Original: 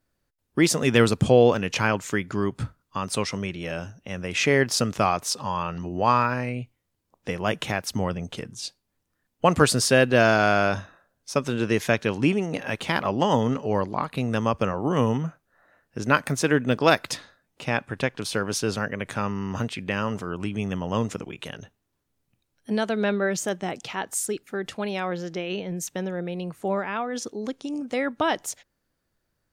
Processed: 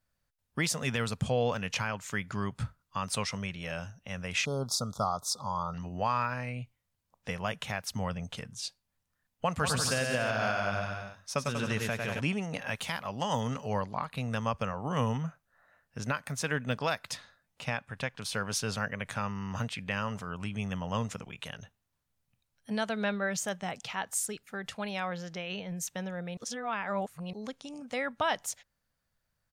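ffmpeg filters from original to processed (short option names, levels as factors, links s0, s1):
-filter_complex "[0:a]asettb=1/sr,asplit=3[s0][s1][s2];[s0]atrim=end=4.454[s3];[s1]atrim=start=4.45:end=5.74,asetpts=PTS-STARTPTS,afade=t=in:d=0.004:c=qsin,afade=t=out:st=1.286:d=0.004:c=qsin,asuperstop=centerf=2200:order=20:qfactor=1.1[s4];[s2]atrim=start=5.736[s5];[s3][s4]acrossfade=d=0.004:c1=hsin:c2=qsin[s6];[s6][s5]acrossfade=d=0.004:c1=qsin:c2=hsin,asplit=3[s7][s8][s9];[s7]afade=t=out:st=9.62:d=0.02[s10];[s8]aecho=1:1:100|190|271|343.9|409.5:0.631|0.398|0.251|0.158|0.1,afade=t=in:st=9.62:d=0.02,afade=t=out:st=12.19:d=0.02[s11];[s9]afade=t=in:st=12.19:d=0.02[s12];[s10][s11][s12]amix=inputs=3:normalize=0,asettb=1/sr,asplit=3[s13][s14][s15];[s13]atrim=end=12.764[s16];[s14]atrim=start=12.76:end=13.74,asetpts=PTS-STARTPTS,afade=t=in:d=0.004:c=qsin,afade=t=out:st=0.976:d=0.004:c=qsin,highshelf=f=5900:g=11[s17];[s15]atrim=start=13.736[s18];[s16][s17]acrossfade=d=0.004:c1=hsin:c2=qsin[s19];[s19][s18]acrossfade=d=0.004:c1=qsin:c2=hsin,asplit=3[s20][s21][s22];[s20]atrim=end=26.372[s23];[s21]atrim=start=26.368:end=27.332,asetpts=PTS-STARTPTS,areverse[s24];[s22]atrim=start=27.328[s25];[s23][s24]acrossfade=d=0.004:c1=hsin:c2=hsin[s26];[s26][s25]acrossfade=d=0.004:c1=hsin:c2=hsin,equalizer=f=340:w=1.8:g=-14,alimiter=limit=0.178:level=0:latency=1:release=430,volume=0.668"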